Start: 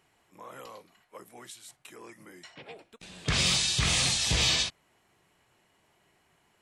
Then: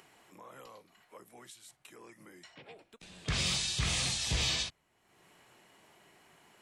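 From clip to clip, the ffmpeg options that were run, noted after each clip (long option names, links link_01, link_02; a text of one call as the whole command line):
ffmpeg -i in.wav -filter_complex "[0:a]lowshelf=frequency=90:gain=5,acrossover=split=150[link_01][link_02];[link_02]acompressor=mode=upward:threshold=-43dB:ratio=2.5[link_03];[link_01][link_03]amix=inputs=2:normalize=0,volume=-6.5dB" out.wav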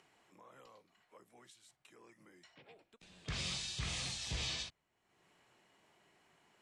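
ffmpeg -i in.wav -af "lowpass=8500,volume=-8dB" out.wav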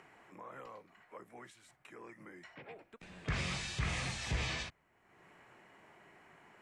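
ffmpeg -i in.wav -filter_complex "[0:a]highshelf=frequency=2700:width_type=q:width=1.5:gain=-8.5,asplit=2[link_01][link_02];[link_02]alimiter=level_in=16.5dB:limit=-24dB:level=0:latency=1:release=273,volume=-16.5dB,volume=0.5dB[link_03];[link_01][link_03]amix=inputs=2:normalize=0,volume=3dB" out.wav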